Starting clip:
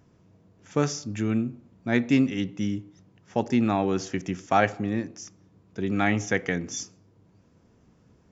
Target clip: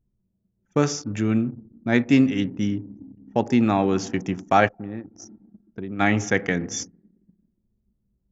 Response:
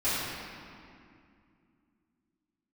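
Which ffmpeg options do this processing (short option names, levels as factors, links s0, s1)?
-filter_complex "[0:a]asplit=2[s0][s1];[1:a]atrim=start_sample=2205,lowpass=2000[s2];[s1][s2]afir=irnorm=-1:irlink=0,volume=0.0355[s3];[s0][s3]amix=inputs=2:normalize=0,asplit=3[s4][s5][s6];[s4]afade=t=out:st=4.67:d=0.02[s7];[s5]acompressor=threshold=0.0141:ratio=2.5,afade=t=in:st=4.67:d=0.02,afade=t=out:st=5.99:d=0.02[s8];[s6]afade=t=in:st=5.99:d=0.02[s9];[s7][s8][s9]amix=inputs=3:normalize=0,anlmdn=0.398,volume=1.5"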